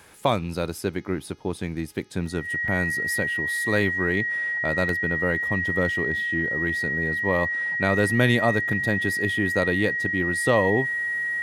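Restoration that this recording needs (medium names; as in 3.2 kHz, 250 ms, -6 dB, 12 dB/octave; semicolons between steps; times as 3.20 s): de-hum 417.9 Hz, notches 15; band-stop 1.9 kHz, Q 30; interpolate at 0.44/0.78/2.26/2.68/4.89/8.73 s, 2.4 ms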